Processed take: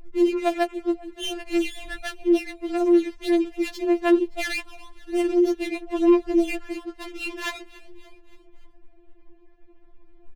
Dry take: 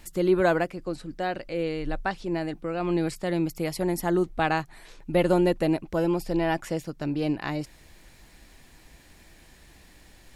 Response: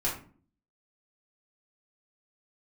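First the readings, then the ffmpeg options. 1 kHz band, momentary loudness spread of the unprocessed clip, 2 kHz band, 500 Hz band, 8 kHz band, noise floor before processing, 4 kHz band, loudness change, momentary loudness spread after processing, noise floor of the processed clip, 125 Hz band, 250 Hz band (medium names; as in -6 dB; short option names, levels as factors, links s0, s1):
-2.5 dB, 10 LU, +1.0 dB, +2.0 dB, +1.5 dB, -54 dBFS, +5.5 dB, +3.0 dB, 13 LU, -52 dBFS, under -25 dB, +5.0 dB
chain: -filter_complex "[0:a]lowshelf=f=120:g=5,alimiter=limit=0.133:level=0:latency=1:release=126,adynamicsmooth=sensitivity=3:basefreq=1900,aexciter=amount=4.2:drive=5.9:freq=2200,adynamicsmooth=sensitivity=7.5:basefreq=680,asplit=2[s0][s1];[s1]asplit=4[s2][s3][s4][s5];[s2]adelay=286,afreqshift=69,volume=0.1[s6];[s3]adelay=572,afreqshift=138,volume=0.0537[s7];[s4]adelay=858,afreqshift=207,volume=0.0292[s8];[s5]adelay=1144,afreqshift=276,volume=0.0157[s9];[s6][s7][s8][s9]amix=inputs=4:normalize=0[s10];[s0][s10]amix=inputs=2:normalize=0,afftfilt=real='re*4*eq(mod(b,16),0)':imag='im*4*eq(mod(b,16),0)':win_size=2048:overlap=0.75,volume=1.41"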